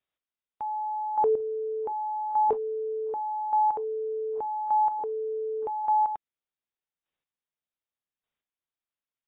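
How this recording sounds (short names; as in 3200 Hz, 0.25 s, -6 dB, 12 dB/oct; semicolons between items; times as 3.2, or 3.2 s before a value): chopped level 0.85 Hz, depth 65%, duty 15%; AAC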